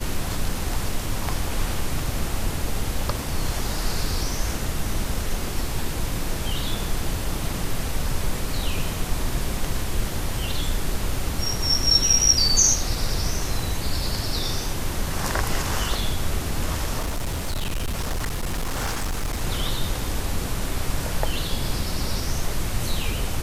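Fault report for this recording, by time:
0:16.99–0:19.42: clipping −22 dBFS

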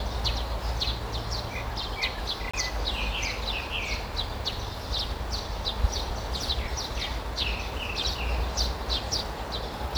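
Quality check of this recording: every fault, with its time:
0:02.51–0:02.54: drop-out 25 ms

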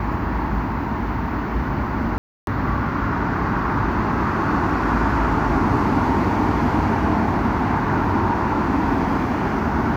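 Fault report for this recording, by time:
0:02.18–0:02.47: drop-out 292 ms

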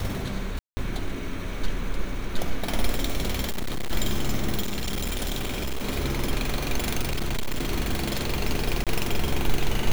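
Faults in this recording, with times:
0:00.59–0:00.77: drop-out 180 ms
0:03.48–0:03.92: clipping −23.5 dBFS
0:04.61–0:05.86: clipping −24 dBFS
0:07.00–0:07.70: clipping −22 dBFS
0:08.84–0:08.87: drop-out 27 ms

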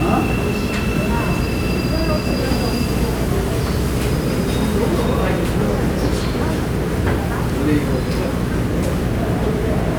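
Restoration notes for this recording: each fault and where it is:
mains hum 60 Hz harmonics 7 −24 dBFS

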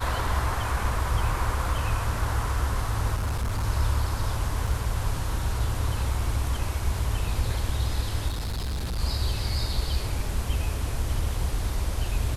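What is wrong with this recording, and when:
0:03.15–0:03.65: clipping −23.5 dBFS
0:04.67: drop-out 3.2 ms
0:08.28–0:09.00: clipping −26.5 dBFS

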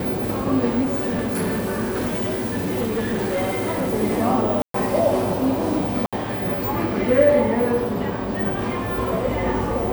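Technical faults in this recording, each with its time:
0:00.83–0:03.94: clipping −19 dBFS
0:04.62–0:04.74: drop-out 123 ms
0:06.06–0:06.13: drop-out 66 ms

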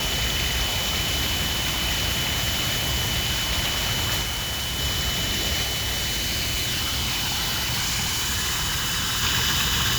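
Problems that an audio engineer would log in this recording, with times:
whistle 3,000 Hz −29 dBFS
0:04.22–0:04.80: clipping −24 dBFS
0:05.62–0:09.23: clipping −22 dBFS

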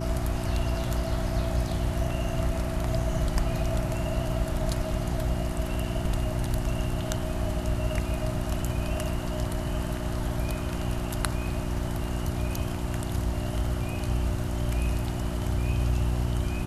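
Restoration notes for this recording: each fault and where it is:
mains hum 60 Hz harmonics 6 −32 dBFS

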